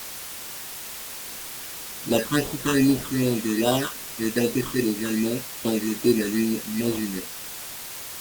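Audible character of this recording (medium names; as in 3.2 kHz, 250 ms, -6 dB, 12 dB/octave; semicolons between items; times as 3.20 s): aliases and images of a low sample rate 2.2 kHz, jitter 0%; phasing stages 8, 2.5 Hz, lowest notch 620–2000 Hz; a quantiser's noise floor 6-bit, dither triangular; Opus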